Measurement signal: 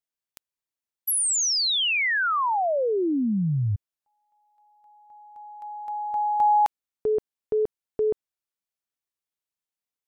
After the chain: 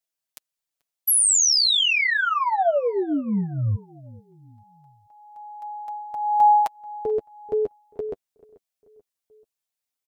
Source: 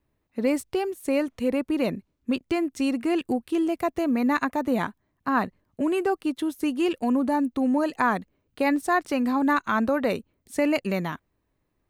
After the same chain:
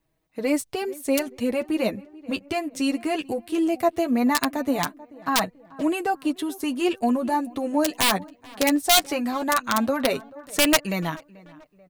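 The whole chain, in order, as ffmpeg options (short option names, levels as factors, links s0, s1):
-filter_complex "[0:a]equalizer=f=670:t=o:w=0.45:g=5,aeval=exprs='(mod(4.22*val(0)+1,2)-1)/4.22':c=same,asplit=2[s0][s1];[s1]adelay=436,lowpass=f=2000:p=1,volume=0.0891,asplit=2[s2][s3];[s3]adelay=436,lowpass=f=2000:p=1,volume=0.47,asplit=2[s4][s5];[s5]adelay=436,lowpass=f=2000:p=1,volume=0.47[s6];[s2][s4][s6]amix=inputs=3:normalize=0[s7];[s0][s7]amix=inputs=2:normalize=0,flanger=delay=6.2:depth=4.2:regen=10:speed=0.18:shape=sinusoidal,highshelf=f=2500:g=7,volume=1.33"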